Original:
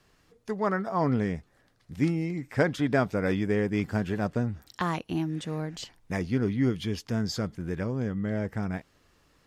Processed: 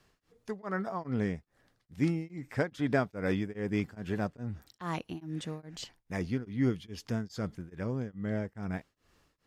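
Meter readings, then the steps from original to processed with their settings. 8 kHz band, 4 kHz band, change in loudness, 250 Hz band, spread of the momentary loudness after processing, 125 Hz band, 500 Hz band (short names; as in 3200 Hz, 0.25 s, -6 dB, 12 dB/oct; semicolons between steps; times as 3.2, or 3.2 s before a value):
-6.0 dB, -6.5 dB, -5.5 dB, -5.0 dB, 11 LU, -5.5 dB, -6.0 dB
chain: beating tremolo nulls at 2.4 Hz; gain -2.5 dB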